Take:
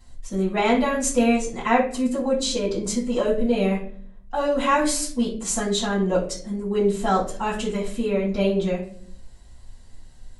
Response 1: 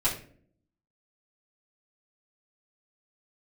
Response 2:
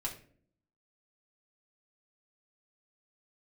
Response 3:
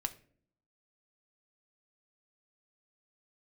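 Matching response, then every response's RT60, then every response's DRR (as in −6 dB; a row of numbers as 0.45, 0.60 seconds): 1; 0.50, 0.50, 0.50 seconds; −9.0, −2.0, 7.5 decibels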